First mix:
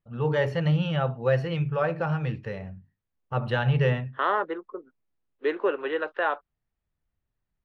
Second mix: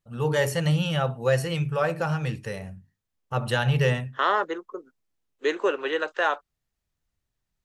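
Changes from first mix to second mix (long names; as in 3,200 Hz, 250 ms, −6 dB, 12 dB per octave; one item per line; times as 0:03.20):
second voice: remove high-frequency loss of the air 98 metres
master: remove high-frequency loss of the air 290 metres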